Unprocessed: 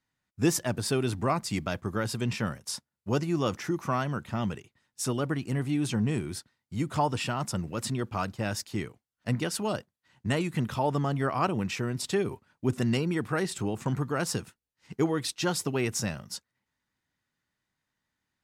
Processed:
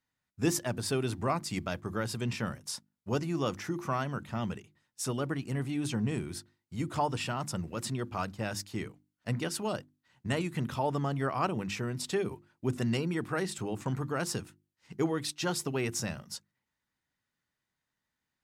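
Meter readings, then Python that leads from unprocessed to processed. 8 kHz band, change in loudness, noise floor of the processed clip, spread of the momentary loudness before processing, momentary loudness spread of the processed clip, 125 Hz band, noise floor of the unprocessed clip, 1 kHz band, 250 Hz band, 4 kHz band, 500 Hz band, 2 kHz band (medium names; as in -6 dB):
-3.0 dB, -3.5 dB, under -85 dBFS, 8 LU, 9 LU, -3.5 dB, under -85 dBFS, -3.0 dB, -4.0 dB, -3.0 dB, -3.0 dB, -3.0 dB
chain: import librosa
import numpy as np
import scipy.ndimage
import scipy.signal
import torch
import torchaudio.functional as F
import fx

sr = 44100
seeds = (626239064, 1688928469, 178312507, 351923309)

y = fx.hum_notches(x, sr, base_hz=50, count=7)
y = y * 10.0 ** (-3.0 / 20.0)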